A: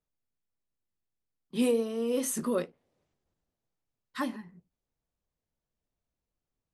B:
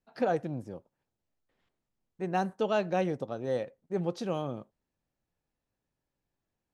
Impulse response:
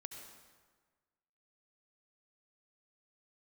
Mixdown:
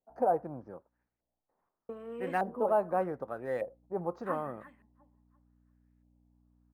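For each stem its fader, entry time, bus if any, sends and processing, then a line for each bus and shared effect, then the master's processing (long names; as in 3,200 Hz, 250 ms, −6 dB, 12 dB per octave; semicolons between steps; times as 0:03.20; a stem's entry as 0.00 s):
−7.5 dB, 0.10 s, muted 0:00.72–0:01.89, no send, echo send −15.5 dB, mains hum 60 Hz, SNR 15 dB
−1.0 dB, 0.00 s, no send, no echo send, high shelf with overshoot 4,100 Hz +6 dB, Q 3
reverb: not used
echo: repeating echo 346 ms, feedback 26%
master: low-shelf EQ 300 Hz −10 dB; auto-filter low-pass saw up 0.83 Hz 660–2,200 Hz; linearly interpolated sample-rate reduction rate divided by 4×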